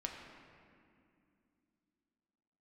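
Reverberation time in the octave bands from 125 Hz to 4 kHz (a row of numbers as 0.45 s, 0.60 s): 3.1 s, 3.8 s, 2.7 s, 2.3 s, 2.2 s, 1.6 s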